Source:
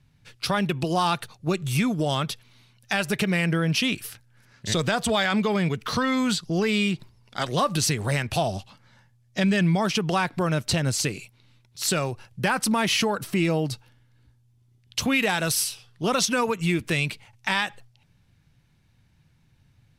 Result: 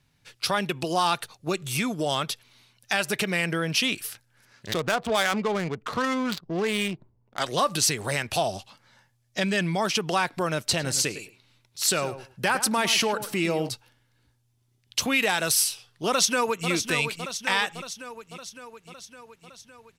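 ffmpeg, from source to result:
ffmpeg -i in.wav -filter_complex "[0:a]asettb=1/sr,asplit=3[link_01][link_02][link_03];[link_01]atrim=end=4.664[link_04];[link_02]atrim=start=4.66:end=7.4,asetpts=PTS-STARTPTS,afade=type=in:duration=0.004:curve=qsin,afade=type=out:start_time=2.736:duration=0.004:curve=qsin,adynamicsmooth=sensitivity=2.5:basefreq=560[link_05];[link_03]atrim=start=7.396[link_06];[link_04][link_05]acrossfade=duration=0.004:curve1=hsin:curve2=qsin[link_07];[link_07][link_06]acrossfade=duration=0.004:curve1=qsin:curve2=hsin,asettb=1/sr,asplit=3[link_08][link_09][link_10];[link_08]atrim=end=10.634[link_11];[link_09]atrim=start=10.63:end=13.69,asetpts=PTS-STARTPTS,afade=type=in:duration=0.004:curve=qsin,afade=type=out:start_time=3.056:duration=0.004:curve=qsin,asplit=2[link_12][link_13];[link_13]adelay=107,lowpass=frequency=1800:poles=1,volume=-11dB,asplit=2[link_14][link_15];[link_15]adelay=107,lowpass=frequency=1800:poles=1,volume=0.18[link_16];[link_12][link_14][link_16]amix=inputs=3:normalize=0,atrim=end_sample=134946[link_17];[link_10]atrim=start=13.686[link_18];[link_11][link_17]acrossfade=duration=0.004:curve1=hsin:curve2=qsin[link_19];[link_19][link_18]acrossfade=duration=0.004:curve1=qsin:curve2=hsin,asplit=2[link_20][link_21];[link_21]afade=type=in:start_time=16.07:duration=0.01,afade=type=out:start_time=16.69:duration=0.01,aecho=0:1:560|1120|1680|2240|2800|3360|3920|4480|5040:0.398107|0.25877|0.1682|0.10933|0.0710646|0.046192|0.0300248|0.0195161|0.0126855[link_22];[link_20][link_22]amix=inputs=2:normalize=0,bass=frequency=250:gain=-9,treble=frequency=4000:gain=3" out.wav

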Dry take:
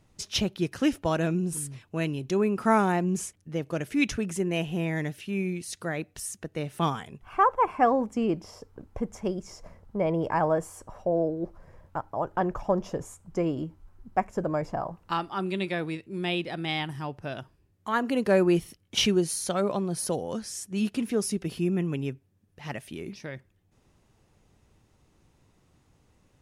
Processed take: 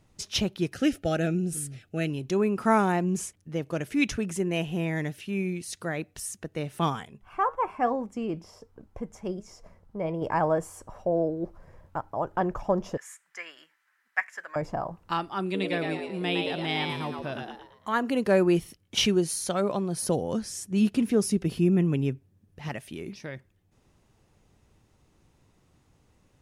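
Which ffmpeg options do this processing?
ffmpeg -i in.wav -filter_complex "[0:a]asettb=1/sr,asplit=3[link_01][link_02][link_03];[link_01]atrim=end=0.744[link_04];[link_02]atrim=start=0.74:end=2.1,asetpts=PTS-STARTPTS,afade=type=in:duration=0.004:curve=qsin,afade=type=out:start_time=1.356:duration=0.004:curve=qsin,asuperstop=centerf=1000:order=8:qfactor=2.5[link_05];[link_03]atrim=start=2.096[link_06];[link_04][link_05]acrossfade=duration=0.004:curve1=hsin:curve2=qsin[link_07];[link_07][link_06]acrossfade=duration=0.004:curve1=qsin:curve2=hsin,asettb=1/sr,asplit=3[link_08][link_09][link_10];[link_08]atrim=end=7.054[link_11];[link_09]atrim=start=7.05:end=10.22,asetpts=PTS-STARTPTS,afade=type=in:duration=0.004:curve=qsin,afade=type=out:start_time=3.166:duration=0.004:curve=qsin,flanger=delay=3.9:depth=2.8:regen=82:speed=1.2:shape=triangular[link_12];[link_10]atrim=start=10.216[link_13];[link_11][link_12]acrossfade=duration=0.004:curve1=hsin:curve2=qsin[link_14];[link_14][link_13]acrossfade=duration=0.004:curve1=qsin:curve2=hsin,asettb=1/sr,asplit=3[link_15][link_16][link_17];[link_15]atrim=end=12.974[link_18];[link_16]atrim=start=12.97:end=14.56,asetpts=PTS-STARTPTS,afade=type=in:duration=0.004:curve=qsin,afade=type=out:start_time=1.586:duration=0.004:curve=qsin,highpass=frequency=1800:width_type=q:width=5.7[link_19];[link_17]atrim=start=14.556[link_20];[link_18][link_19]acrossfade=duration=0.004:curve1=hsin:curve2=qsin[link_21];[link_21][link_20]acrossfade=duration=0.004:curve1=qsin:curve2=hsin,asettb=1/sr,asplit=3[link_22][link_23][link_24];[link_22]atrim=end=15.434[link_25];[link_23]atrim=start=15.43:end=17.95,asetpts=PTS-STARTPTS,afade=type=in:duration=0.004:curve=qsin,afade=type=out:start_time=2.516:duration=0.004:curve=qsin,asplit=6[link_26][link_27][link_28][link_29][link_30][link_31];[link_27]adelay=112,afreqshift=98,volume=-4dB[link_32];[link_28]adelay=224,afreqshift=196,volume=-11.5dB[link_33];[link_29]adelay=336,afreqshift=294,volume=-19.1dB[link_34];[link_30]adelay=448,afreqshift=392,volume=-26.6dB[link_35];[link_31]adelay=560,afreqshift=490,volume=-34.1dB[link_36];[link_26][link_32][link_33][link_34][link_35][link_36]amix=inputs=6:normalize=0,atrim=end_sample=111132[link_37];[link_24]atrim=start=17.946[link_38];[link_25][link_37]acrossfade=duration=0.004:curve1=hsin:curve2=qsin[link_39];[link_39][link_38]acrossfade=duration=0.004:curve1=qsin:curve2=hsin,asettb=1/sr,asplit=3[link_40][link_41][link_42];[link_40]atrim=end=20.024[link_43];[link_41]atrim=start=20.02:end=22.69,asetpts=PTS-STARTPTS,afade=type=in:duration=0.004:curve=qsin,afade=type=out:start_time=2.666:duration=0.004:curve=qsin,lowshelf=frequency=420:gain=6[link_44];[link_42]atrim=start=22.686[link_45];[link_43][link_44]acrossfade=duration=0.004:curve1=hsin:curve2=qsin[link_46];[link_46][link_45]acrossfade=duration=0.004:curve1=qsin:curve2=hsin" out.wav

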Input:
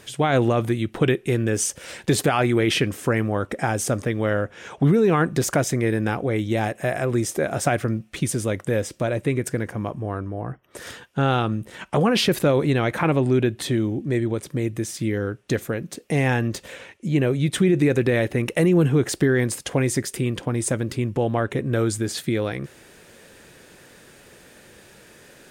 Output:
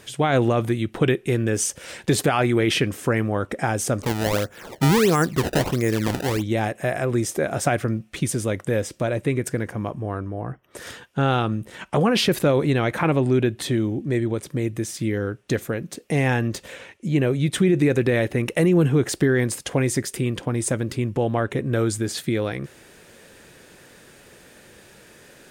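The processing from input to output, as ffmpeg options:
ffmpeg -i in.wav -filter_complex "[0:a]asettb=1/sr,asplit=3[link_01][link_02][link_03];[link_01]atrim=end=4.024[link_04];[link_02]atrim=start=4.02:end=6.43,asetpts=PTS-STARTPTS,afade=type=in:duration=0.004:curve=qsin,afade=type=out:start_time=2.406:duration=0.004:curve=qsin,acrusher=samples=23:mix=1:aa=0.000001:lfo=1:lforange=36.8:lforate=1.5[link_05];[link_03]atrim=start=6.426[link_06];[link_04][link_05]acrossfade=duration=0.004:curve1=hsin:curve2=qsin[link_07];[link_07][link_06]acrossfade=duration=0.004:curve1=qsin:curve2=hsin" out.wav

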